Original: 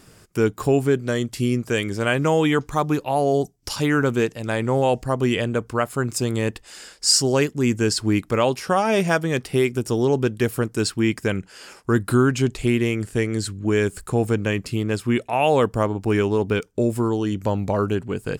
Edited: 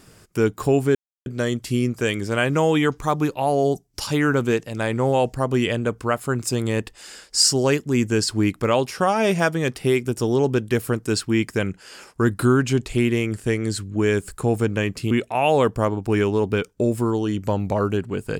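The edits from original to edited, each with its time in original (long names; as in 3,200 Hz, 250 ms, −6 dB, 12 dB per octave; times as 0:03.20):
0:00.95: splice in silence 0.31 s
0:14.80–0:15.09: remove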